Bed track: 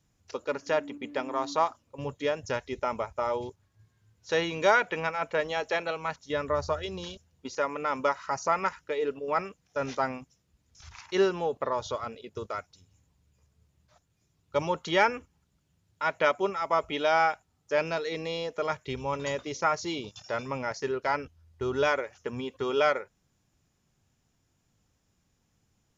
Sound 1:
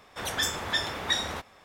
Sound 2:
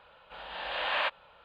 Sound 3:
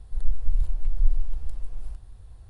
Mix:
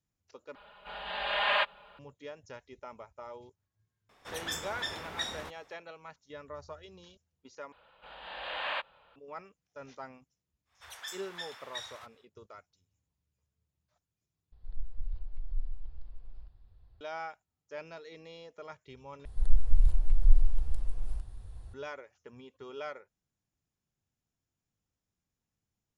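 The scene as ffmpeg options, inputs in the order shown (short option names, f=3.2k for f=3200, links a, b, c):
-filter_complex "[2:a]asplit=2[a][b];[1:a]asplit=2[c][d];[3:a]asplit=2[e][f];[0:a]volume=-16dB[g];[a]aecho=1:1:4.9:0.89[h];[d]highpass=950[i];[e]aresample=11025,aresample=44100[j];[g]asplit=5[k][l][m][n][o];[k]atrim=end=0.554[p];[h]atrim=end=1.44,asetpts=PTS-STARTPTS,volume=-0.5dB[q];[l]atrim=start=1.986:end=7.724[r];[b]atrim=end=1.44,asetpts=PTS-STARTPTS,volume=-5dB[s];[m]atrim=start=9.156:end=14.524[t];[j]atrim=end=2.49,asetpts=PTS-STARTPTS,volume=-13.5dB[u];[n]atrim=start=17.006:end=19.254[v];[f]atrim=end=2.49[w];[o]atrim=start=21.736[x];[c]atrim=end=1.64,asetpts=PTS-STARTPTS,volume=-8.5dB,afade=t=in:d=0.004:c=hsin,afade=t=out:st=1.636:d=0.004:c=hsin,adelay=180369S[y];[i]atrim=end=1.64,asetpts=PTS-STARTPTS,volume=-14dB,afade=t=in:d=0.1,afade=t=out:st=1.54:d=0.1,adelay=10650[z];[p][q]acrossfade=d=0.004:c1=hsin:c2=hsin[aa];[aa][r]acrossfade=d=0.004:c1=hsin:c2=hsin[ab];[ab][s]acrossfade=d=0.004:c1=hsin:c2=hsin[ac];[ac][t]acrossfade=d=0.004:c1=hsin:c2=hsin[ad];[ad][u]acrossfade=d=0.004:c1=hsin:c2=hsin[ae];[ae][v]acrossfade=d=0.004:c1=hsin:c2=hsin[af];[af][w]acrossfade=d=0.004:c1=hsin:c2=hsin[ag];[ag][x]acrossfade=d=0.004:c1=hsin:c2=hsin[ah];[ah][y][z]amix=inputs=3:normalize=0"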